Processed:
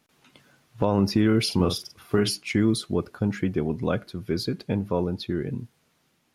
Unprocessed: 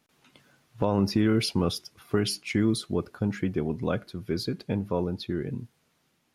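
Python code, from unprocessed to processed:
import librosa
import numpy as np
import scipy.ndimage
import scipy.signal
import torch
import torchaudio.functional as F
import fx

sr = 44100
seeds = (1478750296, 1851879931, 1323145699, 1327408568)

y = fx.doubler(x, sr, ms=44.0, db=-8.0, at=(1.48, 2.29), fade=0.02)
y = y * 10.0 ** (2.5 / 20.0)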